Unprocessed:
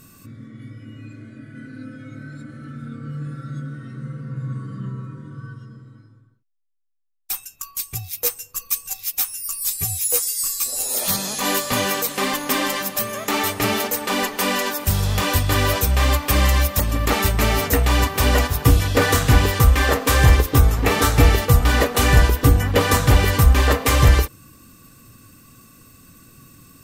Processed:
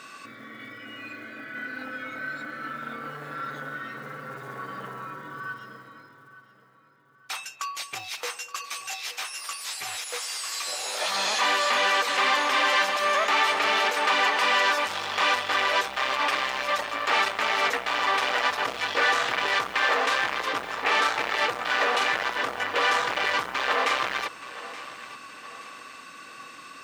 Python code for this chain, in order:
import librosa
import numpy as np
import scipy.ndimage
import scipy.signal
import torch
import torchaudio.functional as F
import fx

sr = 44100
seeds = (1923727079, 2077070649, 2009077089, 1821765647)

p1 = fx.over_compress(x, sr, threshold_db=-27.0, ratio=-1.0)
p2 = x + F.gain(torch.from_numpy(p1), 0.0).numpy()
p3 = 10.0 ** (-18.0 / 20.0) * np.tanh(p2 / 10.0 ** (-18.0 / 20.0))
p4 = scipy.signal.sosfilt(scipy.signal.butter(2, 3400.0, 'lowpass', fs=sr, output='sos'), p3)
p5 = p4 + fx.echo_feedback(p4, sr, ms=874, feedback_pct=42, wet_db=-16, dry=0)
p6 = fx.quant_float(p5, sr, bits=6)
p7 = scipy.signal.sosfilt(scipy.signal.butter(2, 790.0, 'highpass', fs=sr, output='sos'), p6)
y = F.gain(torch.from_numpy(p7), 3.5).numpy()